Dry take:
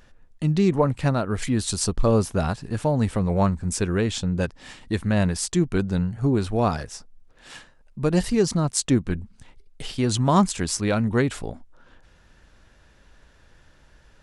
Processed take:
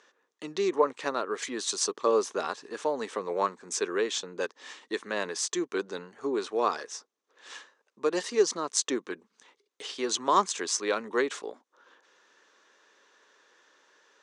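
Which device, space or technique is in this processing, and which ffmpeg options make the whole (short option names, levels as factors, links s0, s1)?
phone speaker on a table: -af "highpass=f=340:w=0.5412,highpass=f=340:w=1.3066,equalizer=f=430:t=q:w=4:g=5,equalizer=f=680:t=q:w=4:g=-5,equalizer=f=1100:t=q:w=4:g=7,equalizer=f=1800:t=q:w=4:g=3,equalizer=f=3600:t=q:w=4:g=4,equalizer=f=6200:t=q:w=4:g=7,lowpass=f=8200:w=0.5412,lowpass=f=8200:w=1.3066,volume=0.596"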